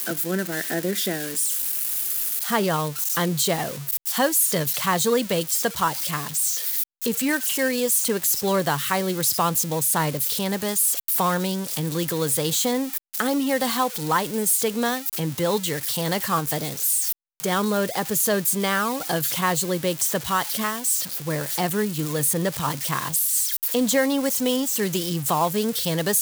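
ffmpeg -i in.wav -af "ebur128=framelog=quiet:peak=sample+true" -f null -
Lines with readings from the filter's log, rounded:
Integrated loudness:
  I:         -22.3 LUFS
  Threshold: -32.3 LUFS
Loudness range:
  LRA:         1.8 LU
  Threshold: -42.3 LUFS
  LRA low:   -23.2 LUFS
  LRA high:  -21.4 LUFS
Sample peak:
  Peak:       -6.9 dBFS
True peak:
  Peak:       -6.9 dBFS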